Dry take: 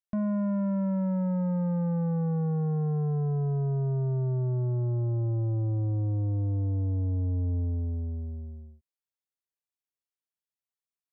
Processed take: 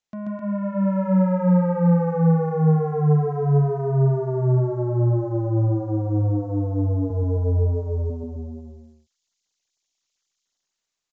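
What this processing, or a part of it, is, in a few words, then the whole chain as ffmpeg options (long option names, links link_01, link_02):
Bluetooth headset: -filter_complex "[0:a]highpass=frequency=100:poles=1,aemphasis=mode=production:type=75fm,asettb=1/sr,asplit=3[link_01][link_02][link_03];[link_01]atrim=end=7.104[link_04];[link_02]atrim=start=7.1:end=8.1,asetpts=PTS-STARTPTS,afade=type=in:duration=0.004:curve=qsin,afade=type=out:start_time=0.996:duration=0.004:curve=qsin,aecho=1:1:2.1:0.93,atrim=end_sample=44100[link_05];[link_03]atrim=start=8.096[link_06];[link_04][link_05]acrossfade=duration=0.004:curve1=hsin:curve2=qsin[link_07];[link_07][link_06]acrossfade=duration=0.004:curve1=qsin:curve2=hsin,highpass=frequency=190:poles=1,aecho=1:1:134.1|259.5:0.891|0.562,dynaudnorm=framelen=160:gausssize=11:maxgain=11dB,aresample=16000,aresample=44100" -ar 16000 -c:a sbc -b:a 64k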